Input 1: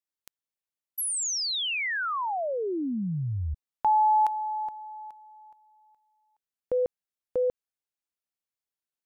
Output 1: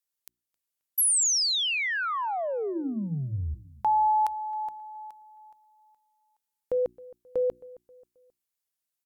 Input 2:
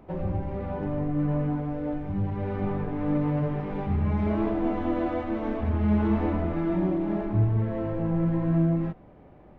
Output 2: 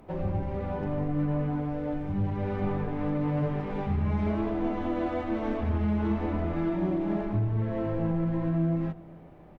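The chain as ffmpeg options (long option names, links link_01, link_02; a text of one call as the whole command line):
ffmpeg -i in.wav -filter_complex "[0:a]aemphasis=mode=production:type=cd,bandreject=frequency=60:width_type=h:width=6,bandreject=frequency=120:width_type=h:width=6,bandreject=frequency=180:width_type=h:width=6,bandreject=frequency=240:width_type=h:width=6,bandreject=frequency=300:width_type=h:width=6,bandreject=frequency=360:width_type=h:width=6,alimiter=limit=-19dB:level=0:latency=1:release=388,asplit=2[link_01][link_02];[link_02]adelay=267,lowpass=frequency=2300:poles=1,volume=-20.5dB,asplit=2[link_03][link_04];[link_04]adelay=267,lowpass=frequency=2300:poles=1,volume=0.41,asplit=2[link_05][link_06];[link_06]adelay=267,lowpass=frequency=2300:poles=1,volume=0.41[link_07];[link_03][link_05][link_07]amix=inputs=3:normalize=0[link_08];[link_01][link_08]amix=inputs=2:normalize=0" out.wav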